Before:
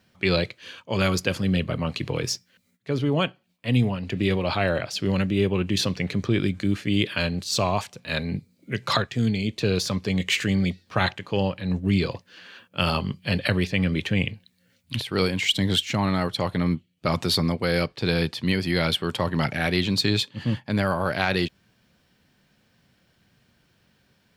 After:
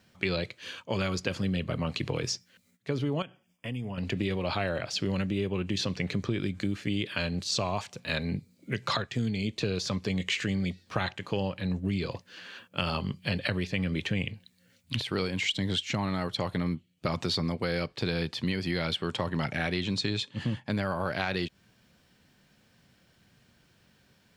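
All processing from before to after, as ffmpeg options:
-filter_complex "[0:a]asettb=1/sr,asplit=3[a][b][c];[a]atrim=end=3.224[d];[b]atrim=start=3.22:end=3.98,asetpts=PTS-STARTPTS,afade=t=in:d=0.004:c=qsin,afade=t=out:st=0.756:d=0.004:c=qsin,asuperstop=centerf=4100:order=20:qfactor=3.7,acompressor=threshold=-33dB:ratio=5:attack=3.2:release=140:knee=1:detection=peak[e];[c]atrim=start=3.976[f];[d][e]acrossfade=d=0.004:c1=hsin:c2=qsin[g];[g][f]acrossfade=d=0.004:c1=qsin:c2=hsin,asettb=1/sr,asplit=3[h][i][j];[h]atrim=end=19.044[k];[i]atrim=start=19.04:end=20.69,asetpts=PTS-STARTPTS,afade=t=in:d=0.004:c=qsin,afade=t=out:st=1.646:d=0.004:c=qsin,lowpass=f=11k:w=0.5412,lowpass=f=11k:w=1.3066,bandreject=f=4.6k:w=14[l];[j]atrim=start=20.686[m];[k][l]acrossfade=d=0.004:c1=hsin:c2=qsin[n];[n][m]acrossfade=d=0.004:c1=qsin:c2=hsin,acrossover=split=7100[o][p];[p]acompressor=threshold=-55dB:ratio=4:attack=1:release=60[q];[o][q]amix=inputs=2:normalize=0,equalizer=f=7.4k:t=o:w=0.64:g=3,acompressor=threshold=-27dB:ratio=4"

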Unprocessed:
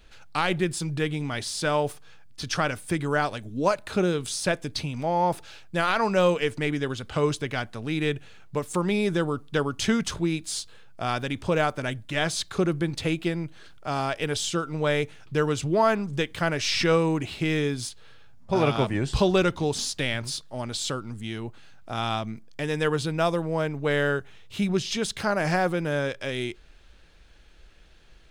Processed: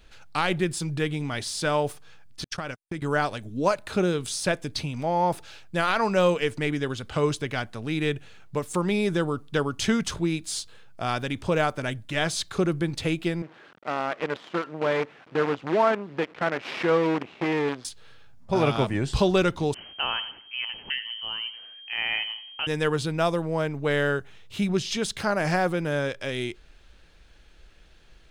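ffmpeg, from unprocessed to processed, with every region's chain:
-filter_complex "[0:a]asettb=1/sr,asplit=3[a][b][c];[a]atrim=end=2.444[d];[b]atrim=start=2.44:end=3.02,asetpts=PTS-STARTPTS,afade=t=in:d=0.004:c=qsin,afade=t=out:st=0.576:d=0.004:c=qsin,agate=range=-56dB:threshold=-30dB:ratio=16:release=100:detection=peak,acompressor=threshold=-27dB:ratio=10:attack=3.2:release=140:knee=1:detection=peak[e];[c]atrim=start=3.016[f];[d][e]acrossfade=d=0.004:c1=hsin:c2=qsin[g];[g][f]acrossfade=d=0.004:c1=qsin:c2=hsin,asettb=1/sr,asplit=3[h][i][j];[h]atrim=end=13.424[k];[i]atrim=start=13.42:end=17.85,asetpts=PTS-STARTPTS,afade=t=in:d=0.004:c=qsin,afade=t=out:st=4.426:d=0.004:c=qsin,aemphasis=mode=reproduction:type=50fm,acrusher=bits=5:dc=4:mix=0:aa=0.000001,highpass=230,lowpass=2.4k[l];[j]atrim=start=17.846[m];[k][l]acrossfade=d=0.004:c1=hsin:c2=qsin[n];[n][m]acrossfade=d=0.004:c1=qsin:c2=hsin,asettb=1/sr,asplit=3[o][p][q];[o]atrim=end=19.744[r];[p]atrim=start=19.74:end=22.67,asetpts=PTS-STARTPTS,afade=t=in:d=0.004:c=qsin,afade=t=out:st=2.926:d=0.004:c=qsin,lowpass=f=2.7k:t=q:w=0.5098,lowpass=f=2.7k:t=q:w=0.6013,lowpass=f=2.7k:t=q:w=0.9,lowpass=f=2.7k:t=q:w=2.563,afreqshift=-3200,aecho=1:1:91|182|273|364:0.2|0.0738|0.0273|0.0101,atrim=end_sample=129213[s];[q]atrim=start=22.666[t];[r][s]acrossfade=d=0.004:c1=hsin:c2=qsin[u];[u][t]acrossfade=d=0.004:c1=qsin:c2=hsin"

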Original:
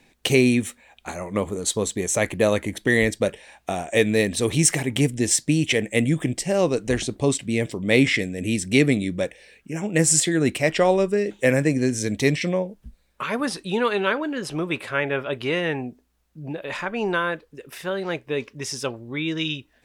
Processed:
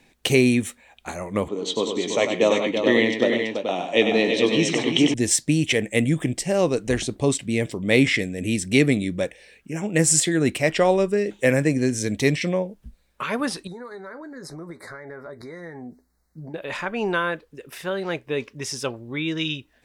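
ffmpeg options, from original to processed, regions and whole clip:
-filter_complex "[0:a]asettb=1/sr,asplit=3[a][b][c];[a]atrim=end=1.484[d];[b]atrim=start=1.48:end=5.14,asetpts=PTS-STARTPTS,afade=t=in:d=0.004:c=qsin,afade=t=out:st=3.656:d=0.004:c=qsin,highpass=f=170:w=0.5412,highpass=f=170:w=1.3066,equalizer=f=180:t=q:w=4:g=-5,equalizer=f=300:t=q:w=4:g=4,equalizer=f=990:t=q:w=4:g=4,equalizer=f=1.6k:t=q:w=4:g=-10,equalizer=f=3.1k:t=q:w=4:g=9,equalizer=f=4.7k:t=q:w=4:g=-4,lowpass=f=5.3k:w=0.5412,lowpass=f=5.3k:w=1.3066,asplit=2[e][f];[f]adelay=17,volume=-10.5dB[g];[e][g]amix=inputs=2:normalize=0,atrim=end_sample=161406,aecho=1:1:97|154|333|429:0.447|0.119|0.447|0.447,atrim=end_sample=161406[h];[c]atrim=start=5.136[i];[d][h]acrossfade=d=0.004:c1=hsin:c2=qsin[j];[j][i]acrossfade=d=0.004:c1=qsin:c2=hsin,asettb=1/sr,asplit=3[k][l][m];[k]atrim=end=13.674[n];[l]atrim=start=13.67:end=16.54,asetpts=PTS-STARTPTS,afade=t=in:d=0.004:c=qsin,afade=t=out:st=2.866:d=0.004:c=qsin,acompressor=threshold=-34dB:ratio=12:attack=3.2:release=140:knee=1:detection=peak,asuperstop=centerf=2900:order=12:qfactor=1.7,asplit=2[o][p];[p]adelay=12,volume=-10.5dB[q];[o][q]amix=inputs=2:normalize=0,atrim=end_sample=126567[r];[m]atrim=start=16.536[s];[n][r]acrossfade=d=0.004:c1=hsin:c2=qsin[t];[t][s]acrossfade=d=0.004:c1=qsin:c2=hsin"

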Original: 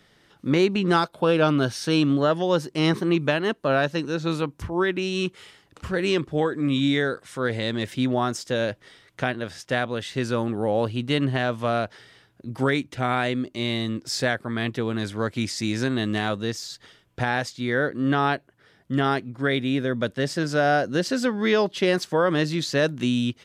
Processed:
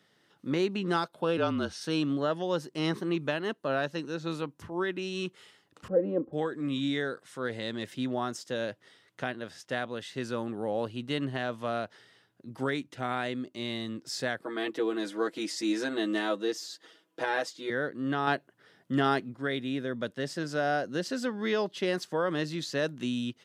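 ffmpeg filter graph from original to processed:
-filter_complex "[0:a]asettb=1/sr,asplit=3[a][b][c];[a]atrim=end=1.374[d];[b]atrim=start=1.37:end=1.81,asetpts=PTS-STARTPTS,afade=t=in:d=0.004:c=qsin,afade=t=out:st=0.436:d=0.004:c=qsin,lowpass=8.8k,afreqshift=-36[e];[c]atrim=start=1.806[f];[d][e]acrossfade=d=0.004:c1=hsin:c2=qsin[g];[g][f]acrossfade=d=0.004:c1=qsin:c2=hsin,asettb=1/sr,asplit=3[h][i][j];[h]atrim=end=5.884[k];[i]atrim=start=5.88:end=6.33,asetpts=PTS-STARTPTS,afade=t=in:d=0.004:c=qsin,afade=t=out:st=0.446:d=0.004:c=qsin,lowpass=f=550:t=q:w=2.6,aecho=1:1:3.8:0.8,atrim=end_sample=19845[l];[j]atrim=start=6.326[m];[k][l]acrossfade=d=0.004:c1=hsin:c2=qsin[n];[n][m]acrossfade=d=0.004:c1=qsin:c2=hsin,asettb=1/sr,asplit=3[o][p][q];[o]atrim=end=14.414[r];[p]atrim=start=14.41:end=17.7,asetpts=PTS-STARTPTS,afade=t=in:d=0.004:c=qsin,afade=t=out:st=3.286:d=0.004:c=qsin,highpass=f=280:w=0.5412,highpass=f=280:w=1.3066,lowshelf=f=370:g=9.5,aecho=1:1:6.2:0.88,atrim=end_sample=145089[s];[q]atrim=start=17.696[t];[r][s]acrossfade=d=0.004:c1=hsin:c2=qsin[u];[u][t]acrossfade=d=0.004:c1=qsin:c2=hsin,asettb=1/sr,asplit=3[v][w][x];[v]atrim=end=18.274[y];[w]atrim=start=18.27:end=19.34,asetpts=PTS-STARTPTS,afade=t=in:d=0.004:c=qsin,afade=t=out:st=1.066:d=0.004:c=qsin,highpass=91,acontrast=37[z];[x]atrim=start=19.336[aa];[y][z]acrossfade=d=0.004:c1=hsin:c2=qsin[ab];[ab][aa]acrossfade=d=0.004:c1=qsin:c2=hsin,highpass=140,bandreject=f=2.3k:w=17,volume=-8dB"

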